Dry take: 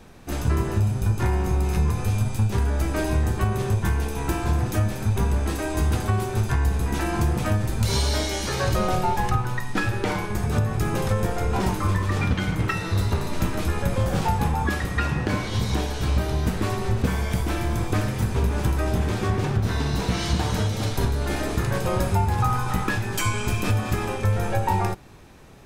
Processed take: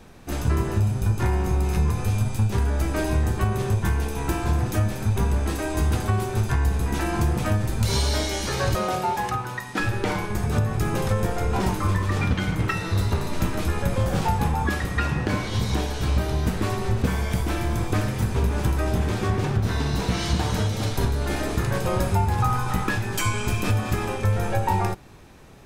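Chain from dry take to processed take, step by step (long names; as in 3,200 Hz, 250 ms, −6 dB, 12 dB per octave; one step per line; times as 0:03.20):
0:08.75–0:09.80: high-pass filter 260 Hz 6 dB per octave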